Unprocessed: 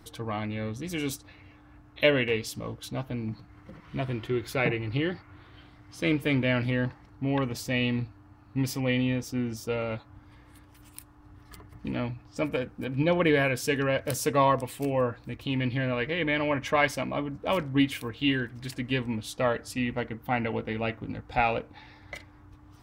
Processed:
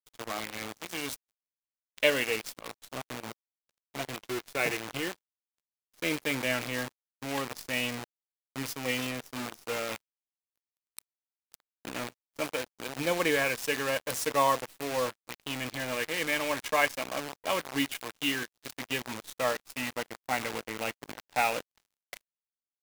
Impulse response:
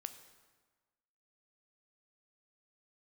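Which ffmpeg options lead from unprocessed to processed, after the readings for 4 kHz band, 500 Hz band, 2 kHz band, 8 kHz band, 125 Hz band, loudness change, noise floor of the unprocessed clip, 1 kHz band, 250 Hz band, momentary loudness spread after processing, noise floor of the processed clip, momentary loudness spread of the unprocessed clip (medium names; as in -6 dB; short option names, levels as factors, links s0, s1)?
+0.5 dB, -4.0 dB, -1.0 dB, +3.0 dB, -14.0 dB, -3.0 dB, -54 dBFS, -1.5 dB, -8.5 dB, 15 LU, under -85 dBFS, 12 LU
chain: -af "acrusher=bits=6:dc=4:mix=0:aa=0.000001,highpass=f=540:p=1,aeval=exprs='sgn(val(0))*max(abs(val(0))-0.00562,0)':c=same"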